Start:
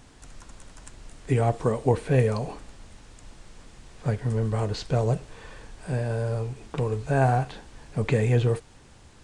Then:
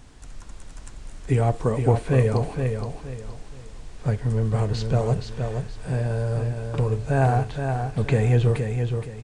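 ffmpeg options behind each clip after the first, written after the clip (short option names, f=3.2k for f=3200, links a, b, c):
-filter_complex "[0:a]lowshelf=f=98:g=7.5,asplit=2[a][b];[b]aecho=0:1:470|940|1410|1880:0.501|0.15|0.0451|0.0135[c];[a][c]amix=inputs=2:normalize=0"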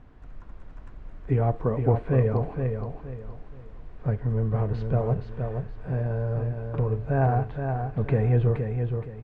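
-af "lowpass=1.6k,bandreject=f=850:w=23,volume=-2.5dB"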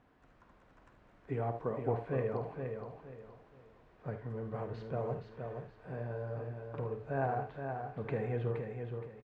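-filter_complex "[0:a]highpass=f=350:p=1,asplit=2[a][b];[b]aecho=0:1:51|77:0.266|0.237[c];[a][c]amix=inputs=2:normalize=0,volume=-7dB"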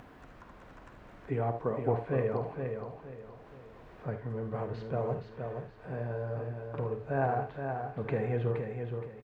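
-af "acompressor=mode=upward:threshold=-47dB:ratio=2.5,volume=4dB"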